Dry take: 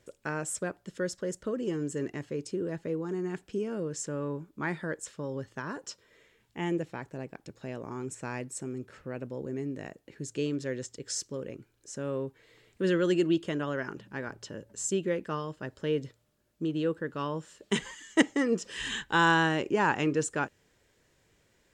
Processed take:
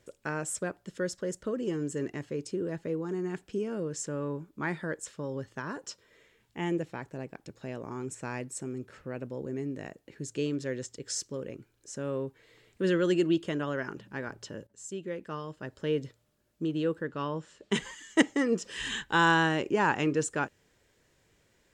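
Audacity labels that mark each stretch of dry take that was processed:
14.670000	15.900000	fade in, from -15.5 dB
17.070000	17.750000	air absorption 56 m

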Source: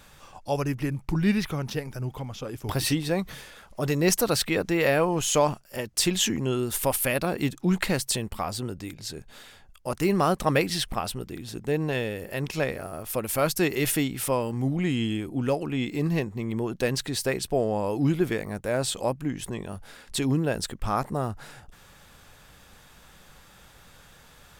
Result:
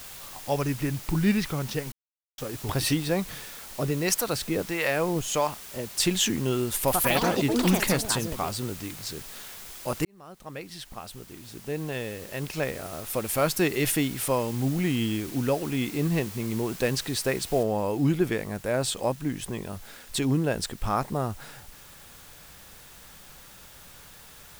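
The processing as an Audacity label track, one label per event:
1.920000	2.380000	mute
3.830000	6.000000	harmonic tremolo 1.5 Hz, crossover 660 Hz
6.760000	8.990000	echoes that change speed 0.117 s, each echo +5 st, echoes 3
10.050000	13.320000	fade in
17.630000	17.630000	noise floor step -43 dB -51 dB

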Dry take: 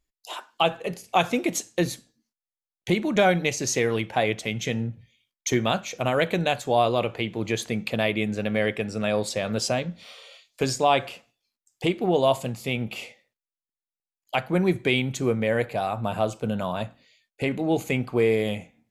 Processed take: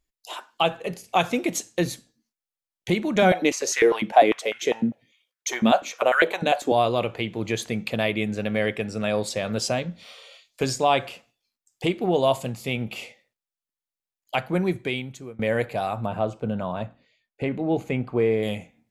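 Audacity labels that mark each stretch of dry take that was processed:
3.220000	6.720000	stepped high-pass 10 Hz 220–1500 Hz
14.460000	15.390000	fade out, to -24 dB
16.060000	18.430000	LPF 1600 Hz 6 dB/oct

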